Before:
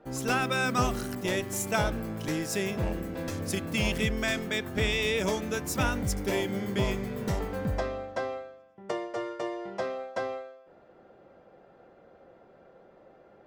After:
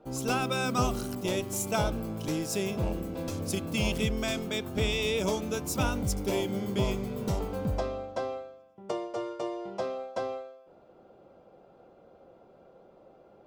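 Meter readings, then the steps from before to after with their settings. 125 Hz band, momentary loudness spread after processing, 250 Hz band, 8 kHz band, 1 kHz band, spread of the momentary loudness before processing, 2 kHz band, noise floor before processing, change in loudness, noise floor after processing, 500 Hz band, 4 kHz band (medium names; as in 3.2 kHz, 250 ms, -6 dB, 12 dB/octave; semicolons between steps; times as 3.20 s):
0.0 dB, 8 LU, 0.0 dB, 0.0 dB, -1.0 dB, 9 LU, -5.5 dB, -57 dBFS, -1.0 dB, -58 dBFS, 0.0 dB, -1.0 dB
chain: peaking EQ 1.8 kHz -12.5 dB 0.47 oct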